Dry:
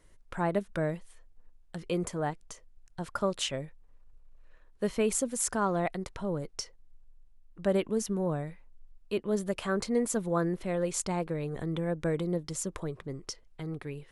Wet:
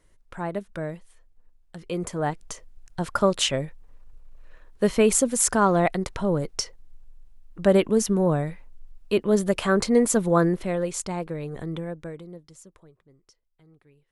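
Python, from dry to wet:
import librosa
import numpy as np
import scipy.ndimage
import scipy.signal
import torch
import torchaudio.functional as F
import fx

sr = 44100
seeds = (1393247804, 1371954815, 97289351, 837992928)

y = fx.gain(x, sr, db=fx.line((1.78, -1.0), (2.47, 9.0), (10.43, 9.0), (10.98, 1.5), (11.75, 1.5), (12.18, -9.0), (13.02, -19.0)))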